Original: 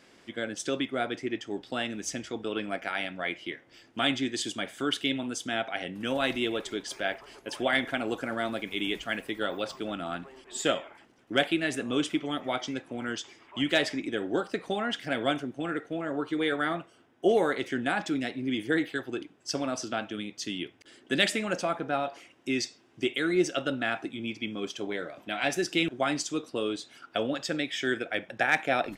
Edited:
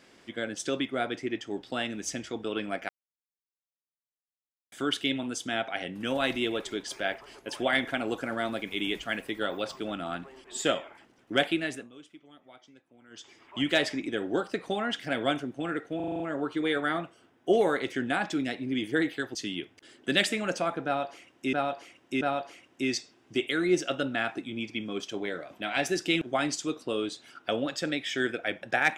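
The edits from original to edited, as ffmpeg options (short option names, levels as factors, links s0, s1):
-filter_complex "[0:a]asplit=14[s0][s1][s2][s3][s4][s5][s6][s7][s8][s9][s10][s11][s12][s13];[s0]atrim=end=2.89,asetpts=PTS-STARTPTS,afade=t=out:st=2.886:d=0.004:c=hsin[s14];[s1]atrim=start=2.89:end=4.72,asetpts=PTS-STARTPTS,volume=0[s15];[s2]atrim=start=4.72:end=11.9,asetpts=PTS-STARTPTS,afade=t=in:d=0.004:c=hsin,afade=t=out:st=6.69:d=0.49:c=qsin:silence=0.0749894[s16];[s3]atrim=start=11.9:end=13.1,asetpts=PTS-STARTPTS,volume=0.075[s17];[s4]atrim=start=13.1:end=16.002,asetpts=PTS-STARTPTS,afade=t=in:d=0.49:c=qsin:silence=0.0749894[s18];[s5]atrim=start=15.958:end=16.002[s19];[s6]atrim=start=15.958:end=16.002[s20];[s7]atrim=start=15.958:end=16.002[s21];[s8]atrim=start=15.958:end=16.002[s22];[s9]atrim=start=15.958:end=16.002[s23];[s10]atrim=start=15.958:end=19.112[s24];[s11]atrim=start=20.378:end=22.562[s25];[s12]atrim=start=21.878:end=22.562[s26];[s13]atrim=start=21.878[s27];[s14][s15][s16][s17][s18]concat=n=5:v=0:a=1[s28];[s28][s19]acrossfade=d=0.004:c1=hsin:c2=hsin[s29];[s29][s20]acrossfade=d=0.004:c1=hsin:c2=hsin[s30];[s30][s21]acrossfade=d=0.004:c1=hsin:c2=hsin[s31];[s31][s22]acrossfade=d=0.004:c1=hsin:c2=hsin[s32];[s32][s23]acrossfade=d=0.004:c1=hsin:c2=hsin[s33];[s33][s24]acrossfade=d=0.004:c1=hsin:c2=hsin[s34];[s34][s25]acrossfade=d=0.004:c1=hsin:c2=hsin[s35];[s35][s26]acrossfade=d=0.004:c1=hsin:c2=hsin[s36];[s36][s27]acrossfade=d=0.004:c1=hsin:c2=hsin"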